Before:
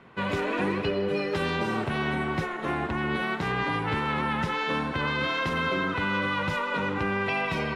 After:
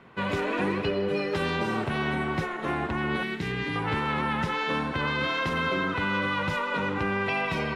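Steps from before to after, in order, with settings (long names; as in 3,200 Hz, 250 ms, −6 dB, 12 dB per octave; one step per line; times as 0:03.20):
0:03.23–0:03.76: flat-topped bell 870 Hz −11.5 dB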